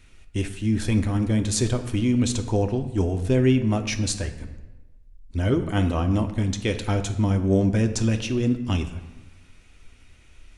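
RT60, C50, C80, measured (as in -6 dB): 1.1 s, 10.5 dB, 12.5 dB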